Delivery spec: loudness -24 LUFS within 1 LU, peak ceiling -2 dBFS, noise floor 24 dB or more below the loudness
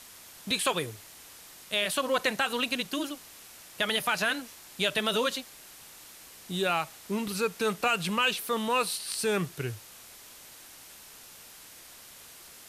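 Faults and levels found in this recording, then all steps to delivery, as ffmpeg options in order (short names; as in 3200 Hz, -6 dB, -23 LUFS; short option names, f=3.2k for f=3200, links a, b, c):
noise floor -50 dBFS; noise floor target -53 dBFS; loudness -29.0 LUFS; peak -14.5 dBFS; loudness target -24.0 LUFS
-> -af "afftdn=nr=6:nf=-50"
-af "volume=5dB"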